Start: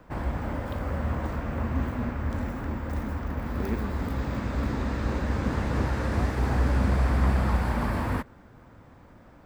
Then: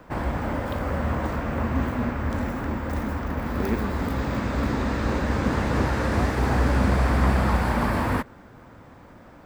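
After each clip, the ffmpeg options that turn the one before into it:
-af "lowshelf=f=130:g=-6,volume=2"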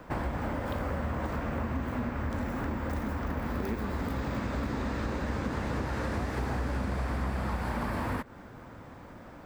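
-af "acompressor=threshold=0.0355:ratio=6"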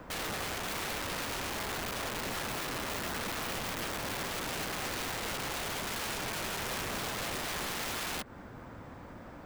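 -af "aeval=exprs='(mod(37.6*val(0)+1,2)-1)/37.6':c=same"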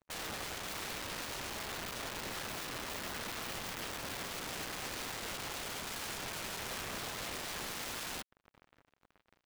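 -af "acrusher=bits=5:mix=0:aa=0.5,volume=0.473"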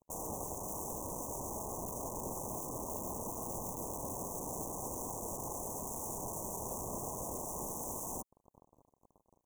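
-af "asuperstop=centerf=2600:order=20:qfactor=0.52,volume=1.5"

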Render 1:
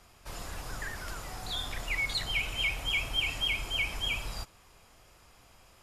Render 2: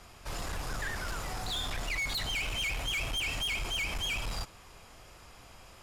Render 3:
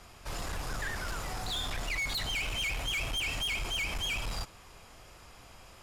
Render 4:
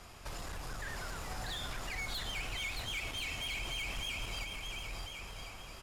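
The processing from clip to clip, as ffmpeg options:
-filter_complex "[0:a]highshelf=f=11000:g=-6.5,asplit=2[s0][s1];[s1]alimiter=level_in=1.41:limit=0.0631:level=0:latency=1,volume=0.708,volume=1[s2];[s0][s2]amix=inputs=2:normalize=0,asoftclip=type=tanh:threshold=0.0316"
-af anull
-filter_complex "[0:a]acompressor=threshold=0.01:ratio=6,asplit=2[s0][s1];[s1]aecho=0:1:620|1054|1358|1570|1719:0.631|0.398|0.251|0.158|0.1[s2];[s0][s2]amix=inputs=2:normalize=0"

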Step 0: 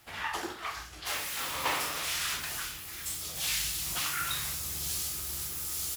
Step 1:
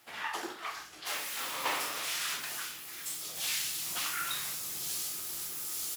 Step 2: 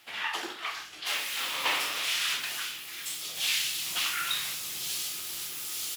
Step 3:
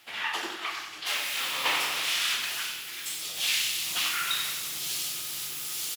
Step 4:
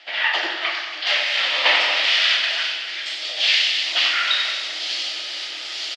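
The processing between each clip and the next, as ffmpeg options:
-af "highpass=210,volume=0.794"
-af "equalizer=f=3000:t=o:w=1.4:g=9"
-af "aecho=1:1:93|186|279|372|465|558|651:0.355|0.209|0.124|0.0729|0.043|0.0254|0.015,volume=1.12"
-af "highpass=f=310:w=0.5412,highpass=f=310:w=1.3066,equalizer=f=410:t=q:w=4:g=-6,equalizer=f=620:t=q:w=4:g=10,equalizer=f=1100:t=q:w=4:g=-5,equalizer=f=1900:t=q:w=4:g=6,equalizer=f=3100:t=q:w=4:g=4,equalizer=f=4700:t=q:w=4:g=5,lowpass=f=4800:w=0.5412,lowpass=f=4800:w=1.3066,aecho=1:1:228:0.237,volume=2.37"

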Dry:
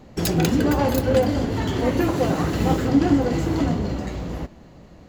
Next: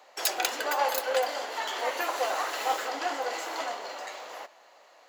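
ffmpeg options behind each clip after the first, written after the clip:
-af "highpass=f=650:w=0.5412,highpass=f=650:w=1.3066"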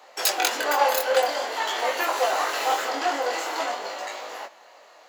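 -af "flanger=delay=19:depth=6:speed=0.49,volume=2.66"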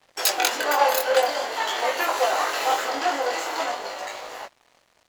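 -af "aeval=exprs='sgn(val(0))*max(abs(val(0))-0.00398,0)':c=same,volume=1.19" -ar 44100 -c:a ac3 -b:a 320k

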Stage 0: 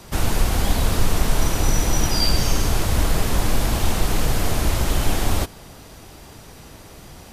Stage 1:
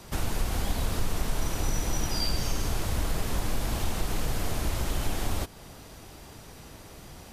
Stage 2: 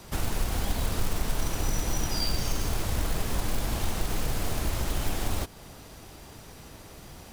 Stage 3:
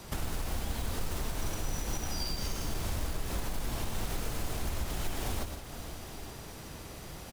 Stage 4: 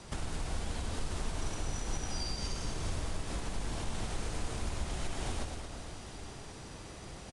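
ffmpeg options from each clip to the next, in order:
-af "acompressor=threshold=0.0447:ratio=1.5,volume=0.596"
-af "acrusher=bits=4:mode=log:mix=0:aa=0.000001"
-filter_complex "[0:a]asplit=2[s0][s1];[s1]aecho=0:1:98|111|155|467|863:0.422|0.376|0.299|0.141|0.112[s2];[s0][s2]amix=inputs=2:normalize=0,alimiter=limit=0.0668:level=0:latency=1:release=334"
-af "aecho=1:1:226:0.447,volume=0.75" -ar 22050 -c:a aac -b:a 96k

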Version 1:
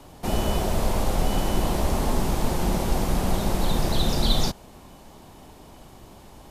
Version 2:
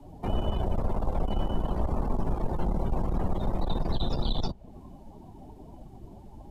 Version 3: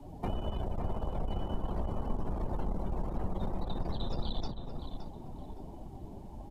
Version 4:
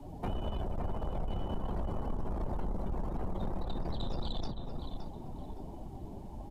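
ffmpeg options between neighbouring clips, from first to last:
-filter_complex "[0:a]aeval=exprs='(tanh(11.2*val(0)+0.55)-tanh(0.55))/11.2':c=same,acrossover=split=120|4300[s0][s1][s2];[s0]acompressor=threshold=0.0355:ratio=4[s3];[s1]acompressor=threshold=0.0141:ratio=4[s4];[s2]acompressor=threshold=0.00251:ratio=4[s5];[s3][s4][s5]amix=inputs=3:normalize=0,afftdn=nr=20:nf=-44,volume=1.88"
-filter_complex "[0:a]acompressor=threshold=0.0316:ratio=6,asplit=2[s0][s1];[s1]adelay=567,lowpass=f=2400:p=1,volume=0.473,asplit=2[s2][s3];[s3]adelay=567,lowpass=f=2400:p=1,volume=0.35,asplit=2[s4][s5];[s5]adelay=567,lowpass=f=2400:p=1,volume=0.35,asplit=2[s6][s7];[s7]adelay=567,lowpass=f=2400:p=1,volume=0.35[s8];[s0][s2][s4][s6][s8]amix=inputs=5:normalize=0"
-af "asoftclip=type=tanh:threshold=0.0376,volume=1.19"

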